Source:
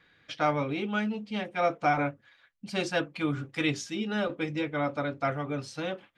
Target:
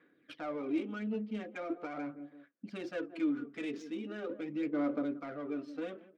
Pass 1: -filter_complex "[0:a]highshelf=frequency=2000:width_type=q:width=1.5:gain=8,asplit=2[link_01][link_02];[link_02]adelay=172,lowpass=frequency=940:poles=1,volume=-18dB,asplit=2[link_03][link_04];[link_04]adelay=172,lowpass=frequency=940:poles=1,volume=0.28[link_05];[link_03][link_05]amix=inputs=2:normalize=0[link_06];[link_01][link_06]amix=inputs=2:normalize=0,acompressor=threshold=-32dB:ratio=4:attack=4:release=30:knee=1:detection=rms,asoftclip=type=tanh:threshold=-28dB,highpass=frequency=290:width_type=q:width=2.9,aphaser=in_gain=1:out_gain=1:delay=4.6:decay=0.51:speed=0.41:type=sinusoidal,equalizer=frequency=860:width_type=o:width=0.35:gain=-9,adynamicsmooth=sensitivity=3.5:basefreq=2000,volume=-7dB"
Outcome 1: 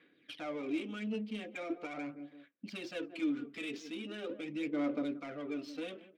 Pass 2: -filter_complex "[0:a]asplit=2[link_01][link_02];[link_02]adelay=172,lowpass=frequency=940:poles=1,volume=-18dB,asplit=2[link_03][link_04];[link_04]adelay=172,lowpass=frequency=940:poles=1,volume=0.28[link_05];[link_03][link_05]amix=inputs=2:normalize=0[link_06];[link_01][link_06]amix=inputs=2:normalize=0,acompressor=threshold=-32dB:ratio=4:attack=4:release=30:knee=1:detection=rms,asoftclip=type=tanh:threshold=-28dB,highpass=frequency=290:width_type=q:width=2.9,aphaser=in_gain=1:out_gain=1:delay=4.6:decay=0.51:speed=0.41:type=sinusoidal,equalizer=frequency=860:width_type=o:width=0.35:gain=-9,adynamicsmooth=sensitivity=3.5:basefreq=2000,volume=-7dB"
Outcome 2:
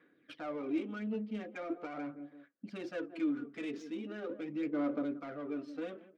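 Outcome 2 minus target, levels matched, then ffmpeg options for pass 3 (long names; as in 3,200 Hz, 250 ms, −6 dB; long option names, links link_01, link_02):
soft clipping: distortion +11 dB
-filter_complex "[0:a]asplit=2[link_01][link_02];[link_02]adelay=172,lowpass=frequency=940:poles=1,volume=-18dB,asplit=2[link_03][link_04];[link_04]adelay=172,lowpass=frequency=940:poles=1,volume=0.28[link_05];[link_03][link_05]amix=inputs=2:normalize=0[link_06];[link_01][link_06]amix=inputs=2:normalize=0,acompressor=threshold=-32dB:ratio=4:attack=4:release=30:knee=1:detection=rms,asoftclip=type=tanh:threshold=-21.5dB,highpass=frequency=290:width_type=q:width=2.9,aphaser=in_gain=1:out_gain=1:delay=4.6:decay=0.51:speed=0.41:type=sinusoidal,equalizer=frequency=860:width_type=o:width=0.35:gain=-9,adynamicsmooth=sensitivity=3.5:basefreq=2000,volume=-7dB"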